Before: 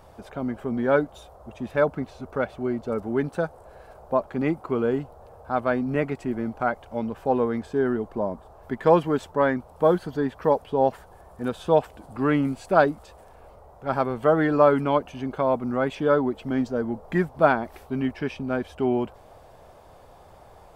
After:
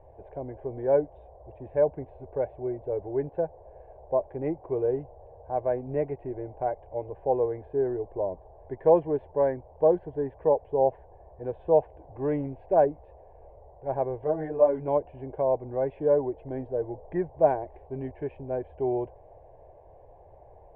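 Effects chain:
Bessel low-pass filter 1,200 Hz, order 6
phaser with its sweep stopped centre 540 Hz, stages 4
0:14.24–0:14.88: string-ensemble chorus

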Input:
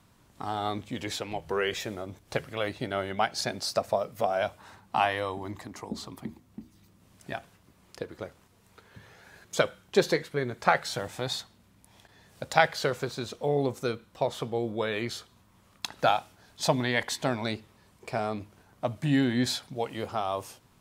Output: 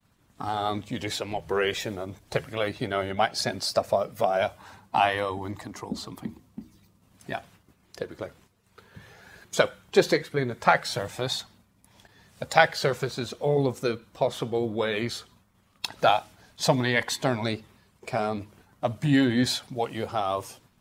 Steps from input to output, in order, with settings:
spectral magnitudes quantised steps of 15 dB
downward expander −55 dBFS
level +3.5 dB

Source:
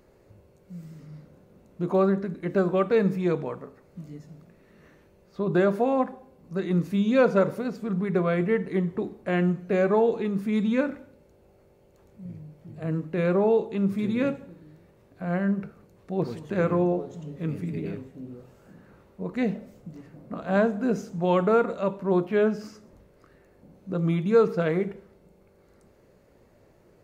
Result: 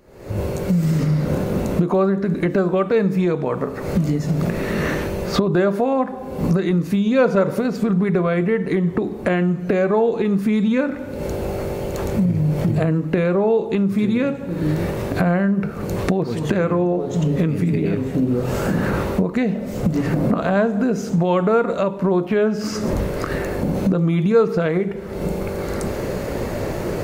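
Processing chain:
camcorder AGC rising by 72 dB per second
level +4 dB

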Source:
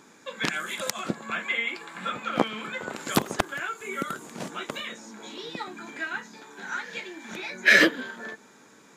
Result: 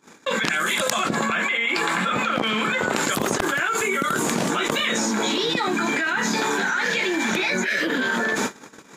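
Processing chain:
noise gate −50 dBFS, range −43 dB
envelope flattener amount 100%
level −8.5 dB

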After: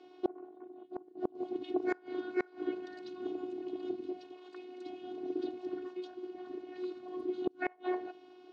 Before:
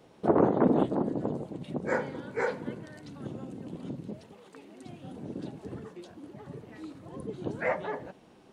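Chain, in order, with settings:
phases set to zero 365 Hz
loudspeaker in its box 240–4,800 Hz, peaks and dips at 310 Hz +8 dB, 510 Hz −7 dB, 1,100 Hz −4 dB, 1,900 Hz −7 dB
gate with flip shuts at −22 dBFS, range −29 dB
level +3.5 dB

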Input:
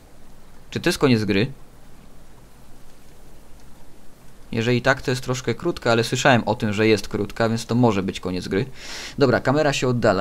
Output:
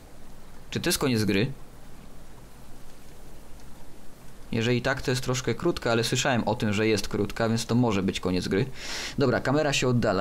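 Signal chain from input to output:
0:00.90–0:01.38: high-shelf EQ 7,500 Hz +11.5 dB
brickwall limiter −14 dBFS, peak gain reduction 11 dB

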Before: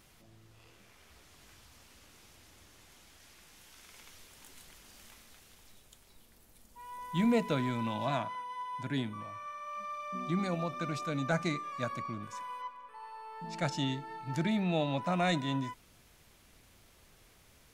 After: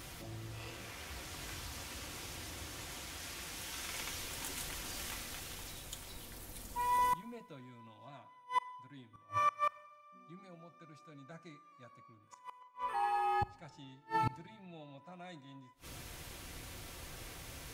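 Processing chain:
notch comb filter 210 Hz
gate with flip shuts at −36 dBFS, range −34 dB
0:12.93–0:13.60: frequency shifter −67 Hz
four-comb reverb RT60 1.2 s, combs from 31 ms, DRR 18 dB
level +14 dB

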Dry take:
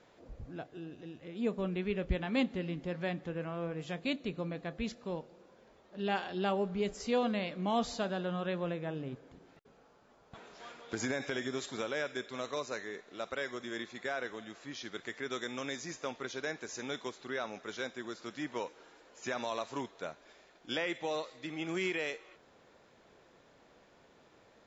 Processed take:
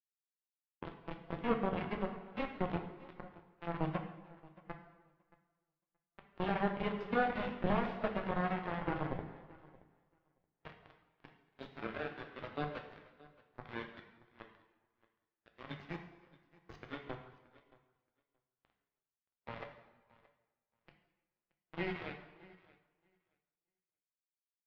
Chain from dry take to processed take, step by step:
high-shelf EQ 2,300 Hz +5 dB
comb filter 6.4 ms, depth 36%
in parallel at +0.5 dB: brickwall limiter −29.5 dBFS, peak gain reduction 11 dB
on the sum: downward compressor 5 to 1, threshold −41 dBFS, peak gain reduction 16.5 dB
volume swells 299 ms
all-pass dispersion lows, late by 52 ms, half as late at 1,500 Hz
bit-depth reduction 6 bits, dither none
high-frequency loss of the air 360 metres
repeating echo 625 ms, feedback 25%, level −15 dB
dense smooth reverb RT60 1.6 s, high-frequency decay 0.85×, DRR 2 dB
every bin expanded away from the loudest bin 1.5 to 1
level +9 dB

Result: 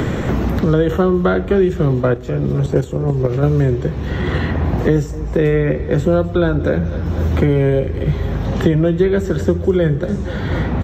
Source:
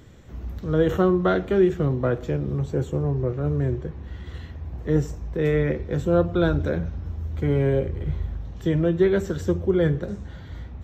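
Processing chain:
0:02.00–0:03.43: output level in coarse steps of 11 dB
repeating echo 249 ms, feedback 45%, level −21 dB
multiband upward and downward compressor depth 100%
level +6.5 dB

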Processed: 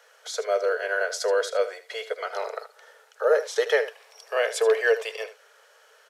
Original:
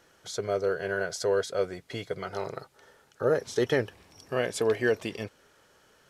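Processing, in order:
Chebyshev high-pass with heavy ripple 430 Hz, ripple 3 dB
single-tap delay 77 ms −13.5 dB
level +6.5 dB

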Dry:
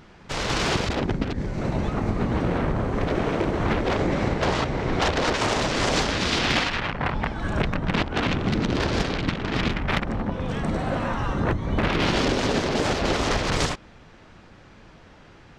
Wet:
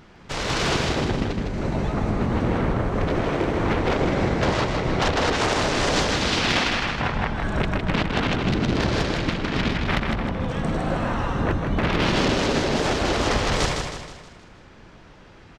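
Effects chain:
repeating echo 158 ms, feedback 47%, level −5 dB

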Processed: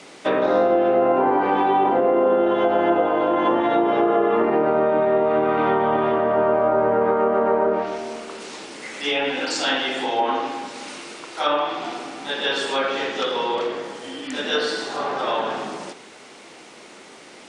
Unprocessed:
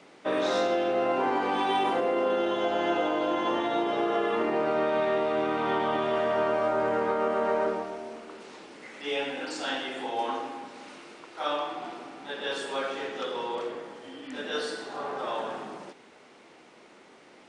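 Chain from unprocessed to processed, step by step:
treble cut that deepens with the level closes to 1,100 Hz, closed at −22.5 dBFS
high-shelf EQ 4,400 Hz +11 dB
hum removal 61.41 Hz, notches 31
level +9 dB

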